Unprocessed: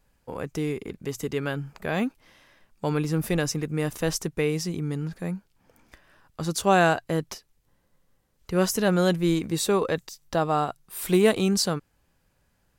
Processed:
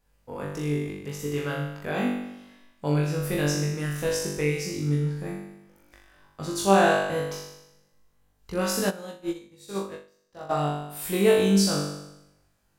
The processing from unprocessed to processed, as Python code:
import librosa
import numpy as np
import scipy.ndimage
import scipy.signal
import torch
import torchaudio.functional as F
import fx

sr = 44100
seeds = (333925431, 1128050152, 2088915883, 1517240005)

y = fx.room_flutter(x, sr, wall_m=3.5, rt60_s=0.89)
y = fx.upward_expand(y, sr, threshold_db=-28.0, expansion=2.5, at=(8.89, 10.49), fade=0.02)
y = y * librosa.db_to_amplitude(-5.5)